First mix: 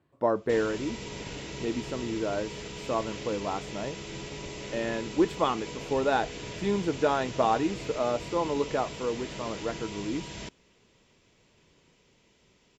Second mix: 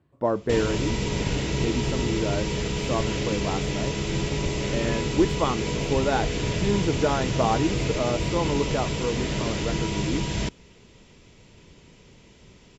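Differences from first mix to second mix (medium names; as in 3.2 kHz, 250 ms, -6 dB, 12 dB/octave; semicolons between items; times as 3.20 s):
background +9.0 dB; master: add bass shelf 210 Hz +9.5 dB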